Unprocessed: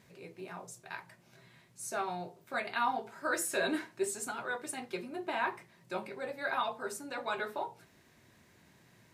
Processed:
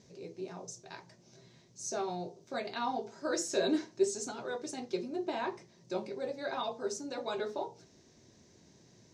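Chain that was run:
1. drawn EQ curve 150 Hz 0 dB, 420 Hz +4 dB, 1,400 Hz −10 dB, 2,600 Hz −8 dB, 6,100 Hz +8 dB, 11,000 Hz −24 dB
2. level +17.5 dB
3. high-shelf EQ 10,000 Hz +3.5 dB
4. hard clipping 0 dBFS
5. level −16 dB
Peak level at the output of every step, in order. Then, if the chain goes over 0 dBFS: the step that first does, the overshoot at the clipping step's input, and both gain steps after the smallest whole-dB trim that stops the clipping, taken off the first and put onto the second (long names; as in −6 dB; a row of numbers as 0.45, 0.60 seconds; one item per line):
−19.0, −1.5, −1.5, −1.5, −17.5 dBFS
no step passes full scale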